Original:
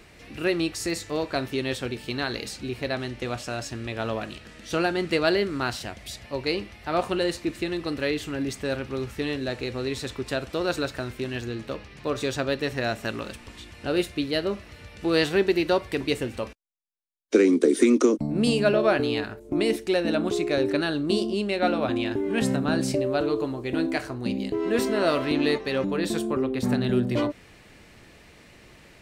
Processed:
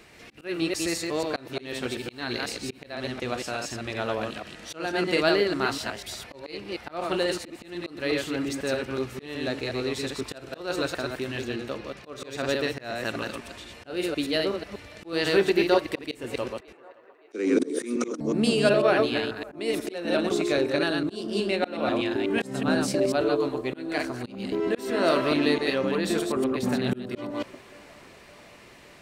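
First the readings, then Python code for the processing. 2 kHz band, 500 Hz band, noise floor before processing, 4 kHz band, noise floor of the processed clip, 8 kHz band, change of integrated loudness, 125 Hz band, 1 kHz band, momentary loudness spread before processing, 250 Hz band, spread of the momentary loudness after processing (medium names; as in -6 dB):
0.0 dB, -1.0 dB, -52 dBFS, 0.0 dB, -50 dBFS, 0.0 dB, -1.5 dB, -4.5 dB, -0.5 dB, 11 LU, -2.5 dB, 13 LU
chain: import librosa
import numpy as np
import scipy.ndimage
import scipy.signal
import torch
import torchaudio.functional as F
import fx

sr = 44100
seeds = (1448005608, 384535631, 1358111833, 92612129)

y = fx.reverse_delay(x, sr, ms=123, wet_db=-3.5)
y = fx.echo_banded(y, sr, ms=567, feedback_pct=83, hz=950.0, wet_db=-23)
y = fx.auto_swell(y, sr, attack_ms=261.0)
y = fx.low_shelf(y, sr, hz=130.0, db=-9.5)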